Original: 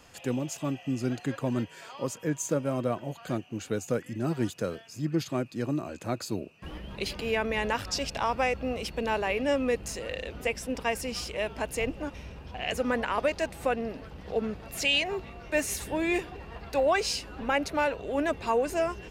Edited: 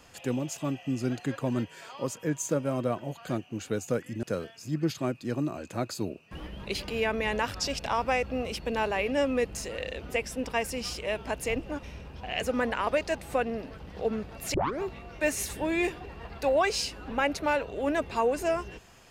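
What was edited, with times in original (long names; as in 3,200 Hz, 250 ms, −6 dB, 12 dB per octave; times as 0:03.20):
0:04.23–0:04.54: remove
0:14.85: tape start 0.28 s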